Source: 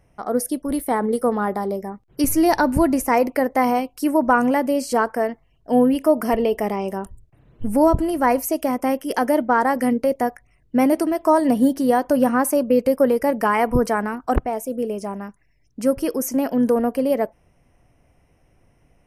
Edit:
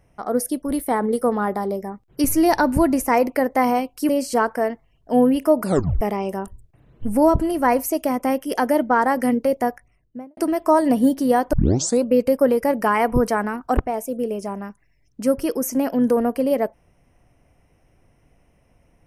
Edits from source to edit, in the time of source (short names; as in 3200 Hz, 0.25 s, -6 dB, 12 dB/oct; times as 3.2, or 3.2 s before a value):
4.09–4.68 cut
6.21 tape stop 0.39 s
10.28–10.96 studio fade out
12.12 tape start 0.51 s